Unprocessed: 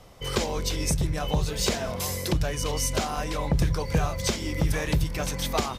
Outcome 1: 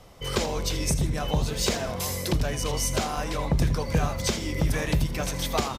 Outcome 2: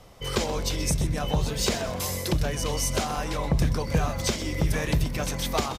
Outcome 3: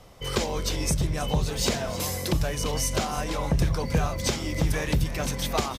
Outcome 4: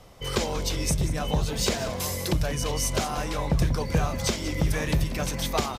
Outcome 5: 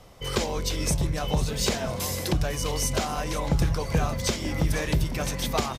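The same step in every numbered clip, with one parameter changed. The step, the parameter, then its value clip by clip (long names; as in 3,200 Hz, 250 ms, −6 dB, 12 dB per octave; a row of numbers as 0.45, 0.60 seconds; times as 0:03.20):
echo with shifted repeats, delay time: 80, 127, 317, 187, 502 milliseconds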